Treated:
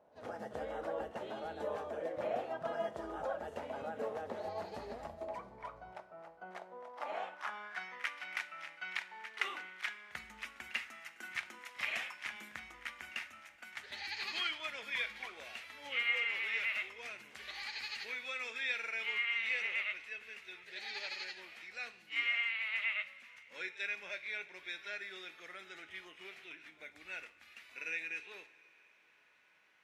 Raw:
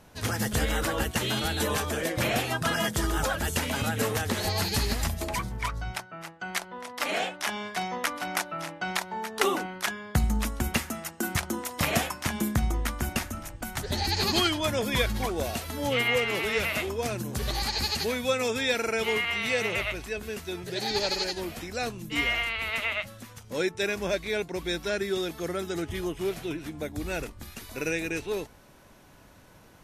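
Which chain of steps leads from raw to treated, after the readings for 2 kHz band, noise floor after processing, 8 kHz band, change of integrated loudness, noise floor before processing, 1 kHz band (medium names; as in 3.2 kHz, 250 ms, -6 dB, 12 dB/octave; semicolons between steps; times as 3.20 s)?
-7.0 dB, -64 dBFS, -24.0 dB, -10.5 dB, -53 dBFS, -12.5 dB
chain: pre-echo 43 ms -17 dB; two-slope reverb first 0.37 s, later 4.7 s, from -19 dB, DRR 9.5 dB; band-pass sweep 620 Hz -> 2.2 kHz, 6.78–8.08 s; trim -4.5 dB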